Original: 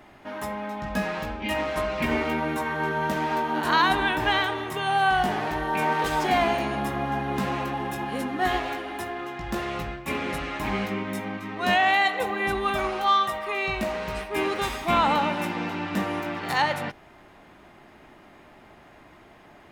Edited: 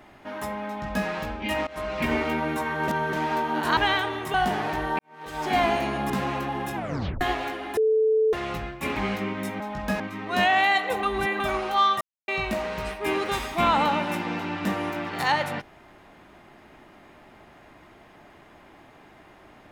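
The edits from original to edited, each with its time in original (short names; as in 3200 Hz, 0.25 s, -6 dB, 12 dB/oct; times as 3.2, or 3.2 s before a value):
0.67–1.07 copy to 11.3
1.67–2.09 fade in equal-power, from -20.5 dB
2.88–3.13 reverse
3.77–4.22 cut
4.79–5.12 cut
5.77–6.35 fade in quadratic
6.88–7.35 cut
8 tape stop 0.46 s
9.02–9.58 bleep 438 Hz -17.5 dBFS
10.21–10.66 cut
12.33–12.7 reverse
13.31–13.58 mute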